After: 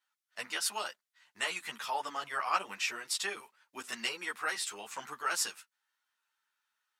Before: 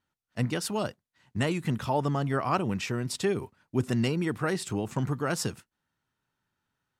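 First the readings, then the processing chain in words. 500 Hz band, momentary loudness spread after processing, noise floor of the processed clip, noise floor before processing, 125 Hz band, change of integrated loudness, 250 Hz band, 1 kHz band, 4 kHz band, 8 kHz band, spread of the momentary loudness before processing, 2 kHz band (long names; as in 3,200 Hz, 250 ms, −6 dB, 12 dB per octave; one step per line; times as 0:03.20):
−14.5 dB, 12 LU, below −85 dBFS, below −85 dBFS, below −35 dB, −5.0 dB, −24.0 dB, −2.5 dB, +2.0 dB, +2.0 dB, 6 LU, +1.0 dB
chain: high-pass filter 1,200 Hz 12 dB per octave
string-ensemble chorus
level +5 dB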